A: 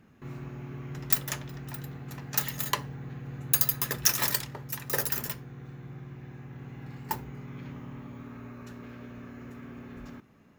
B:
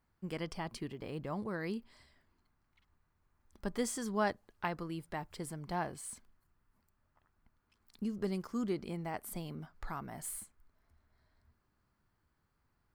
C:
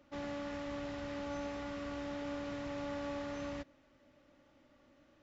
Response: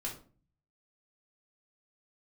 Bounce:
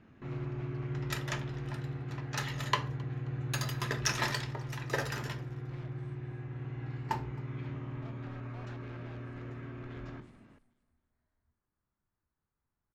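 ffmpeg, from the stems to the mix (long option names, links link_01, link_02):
-filter_complex "[0:a]volume=-3.5dB,asplit=3[link_01][link_02][link_03];[link_02]volume=-3.5dB[link_04];[link_03]volume=-22dB[link_05];[1:a]aeval=exprs='(mod(44.7*val(0)+1,2)-1)/44.7':channel_layout=same,volume=-10.5dB,asplit=2[link_06][link_07];[link_07]volume=-21.5dB[link_08];[link_06]aemphasis=mode=reproduction:type=75fm,alimiter=level_in=23.5dB:limit=-24dB:level=0:latency=1:release=409,volume=-23.5dB,volume=0dB[link_09];[3:a]atrim=start_sample=2205[link_10];[link_04][link_10]afir=irnorm=-1:irlink=0[link_11];[link_05][link_08]amix=inputs=2:normalize=0,aecho=0:1:266|532|798|1064|1330:1|0.39|0.152|0.0593|0.0231[link_12];[link_01][link_09][link_11][link_12]amix=inputs=4:normalize=0,lowpass=4100"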